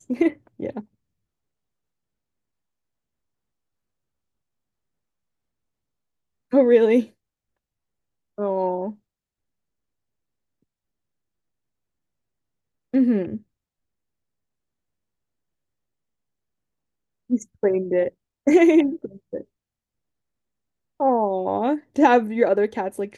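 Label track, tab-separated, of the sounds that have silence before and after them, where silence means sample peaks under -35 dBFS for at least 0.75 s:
6.530000	7.050000	sound
8.380000	8.920000	sound
12.940000	13.370000	sound
17.300000	19.410000	sound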